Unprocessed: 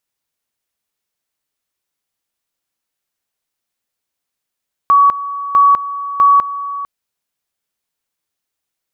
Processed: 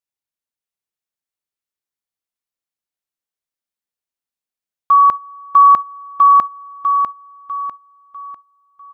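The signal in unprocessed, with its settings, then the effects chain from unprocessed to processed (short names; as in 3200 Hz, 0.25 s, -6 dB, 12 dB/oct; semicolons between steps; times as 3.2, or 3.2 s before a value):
two-level tone 1130 Hz -5.5 dBFS, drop 14.5 dB, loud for 0.20 s, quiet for 0.45 s, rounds 3
gate -16 dBFS, range -13 dB; feedback echo 0.648 s, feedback 37%, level -5 dB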